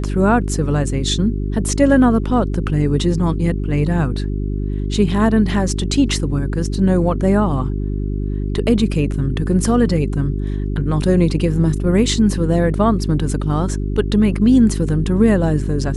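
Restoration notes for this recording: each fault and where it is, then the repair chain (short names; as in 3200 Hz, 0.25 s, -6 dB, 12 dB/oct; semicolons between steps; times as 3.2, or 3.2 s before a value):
hum 50 Hz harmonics 8 -21 dBFS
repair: de-hum 50 Hz, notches 8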